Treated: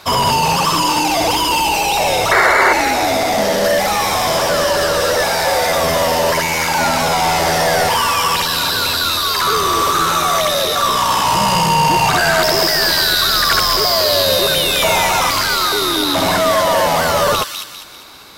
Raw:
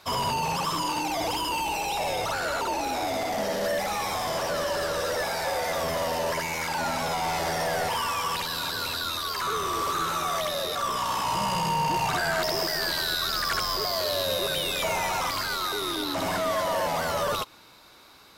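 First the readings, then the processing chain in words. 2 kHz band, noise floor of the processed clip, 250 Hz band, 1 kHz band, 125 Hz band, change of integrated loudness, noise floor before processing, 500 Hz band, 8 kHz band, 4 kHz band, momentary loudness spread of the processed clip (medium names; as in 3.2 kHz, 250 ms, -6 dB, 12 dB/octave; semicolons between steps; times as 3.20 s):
+14.0 dB, -26 dBFS, +12.5 dB, +12.5 dB, +12.5 dB, +13.5 dB, -52 dBFS, +12.5 dB, +14.5 dB, +14.0 dB, 3 LU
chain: painted sound noise, 2.31–2.73 s, 350–2300 Hz -22 dBFS; feedback echo behind a high-pass 199 ms, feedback 42%, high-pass 2.6 kHz, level -3.5 dB; loudness maximiser +13.5 dB; trim -1 dB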